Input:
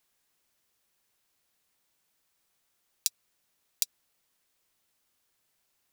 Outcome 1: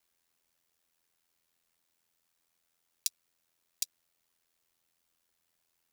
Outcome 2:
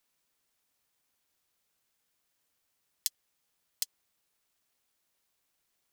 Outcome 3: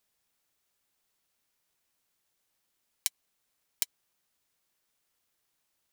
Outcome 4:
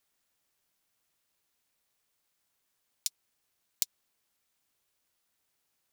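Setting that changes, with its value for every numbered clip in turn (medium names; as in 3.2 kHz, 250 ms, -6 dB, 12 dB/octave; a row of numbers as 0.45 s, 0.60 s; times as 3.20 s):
ring modulator, frequency: 42 Hz, 650 Hz, 1.7 kHz, 260 Hz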